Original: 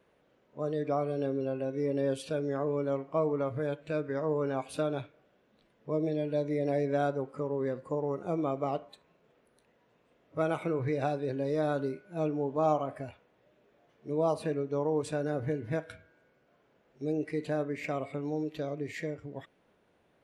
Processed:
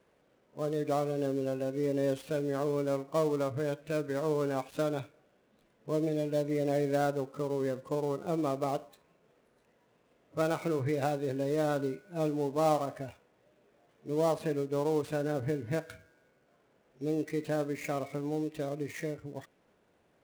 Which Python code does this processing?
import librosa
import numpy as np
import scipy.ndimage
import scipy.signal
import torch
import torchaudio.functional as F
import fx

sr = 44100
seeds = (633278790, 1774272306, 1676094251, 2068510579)

y = fx.dead_time(x, sr, dead_ms=0.081)